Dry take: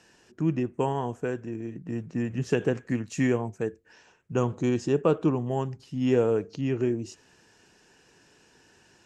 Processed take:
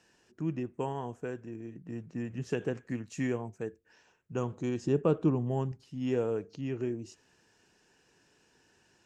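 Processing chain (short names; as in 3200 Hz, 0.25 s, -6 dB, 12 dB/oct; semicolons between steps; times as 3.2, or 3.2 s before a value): 4.83–5.72 low shelf 380 Hz +7.5 dB; gain -7.5 dB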